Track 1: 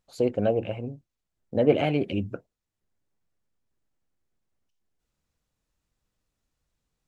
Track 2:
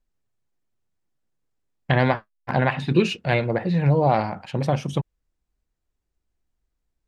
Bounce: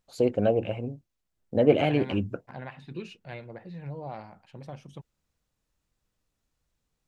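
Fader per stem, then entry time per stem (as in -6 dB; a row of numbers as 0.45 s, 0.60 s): +0.5 dB, -19.5 dB; 0.00 s, 0.00 s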